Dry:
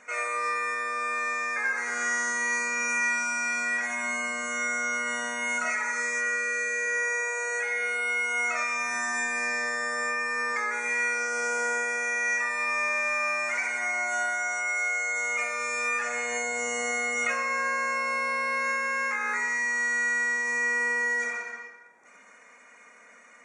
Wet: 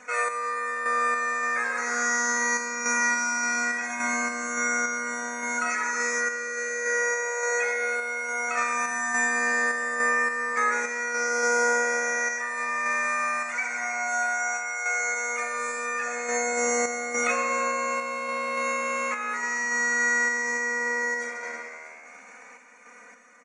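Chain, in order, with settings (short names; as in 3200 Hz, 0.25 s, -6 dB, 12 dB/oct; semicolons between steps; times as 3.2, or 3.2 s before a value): comb 4 ms, depth 90%; frequency-shifting echo 0.32 s, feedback 62%, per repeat +77 Hz, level -18.5 dB; random-step tremolo; gain +3 dB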